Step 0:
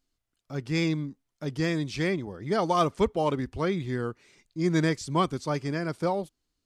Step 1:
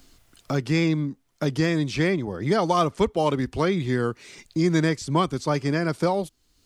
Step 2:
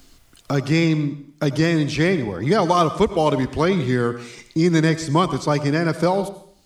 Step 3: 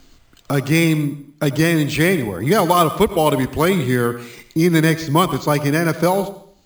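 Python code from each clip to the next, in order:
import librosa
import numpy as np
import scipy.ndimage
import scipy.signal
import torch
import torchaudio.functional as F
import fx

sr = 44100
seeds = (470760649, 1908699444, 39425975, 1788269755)

y1 = fx.band_squash(x, sr, depth_pct=70)
y1 = F.gain(torch.from_numpy(y1), 4.0).numpy()
y2 = fx.rev_plate(y1, sr, seeds[0], rt60_s=0.58, hf_ratio=1.0, predelay_ms=75, drr_db=12.5)
y2 = F.gain(torch.from_numpy(y2), 4.0).numpy()
y3 = np.repeat(scipy.signal.resample_poly(y2, 1, 4), 4)[:len(y2)]
y3 = fx.dynamic_eq(y3, sr, hz=2800.0, q=0.78, threshold_db=-34.0, ratio=4.0, max_db=4)
y3 = F.gain(torch.from_numpy(y3), 2.0).numpy()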